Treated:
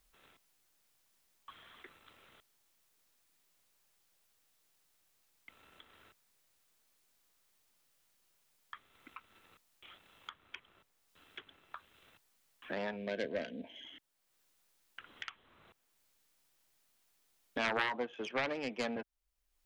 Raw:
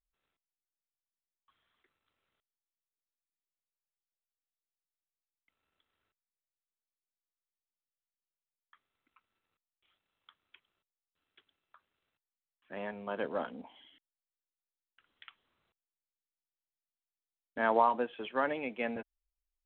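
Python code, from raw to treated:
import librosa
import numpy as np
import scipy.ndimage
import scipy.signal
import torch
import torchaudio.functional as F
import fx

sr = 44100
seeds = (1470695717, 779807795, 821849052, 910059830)

y = fx.self_delay(x, sr, depth_ms=0.57)
y = fx.spec_box(y, sr, start_s=12.96, length_s=0.89, low_hz=710.0, high_hz=1500.0, gain_db=-16)
y = fx.band_squash(y, sr, depth_pct=70)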